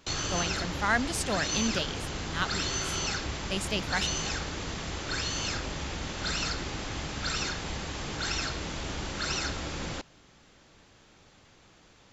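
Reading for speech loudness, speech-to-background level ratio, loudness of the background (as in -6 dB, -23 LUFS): -32.0 LUFS, 0.5 dB, -32.5 LUFS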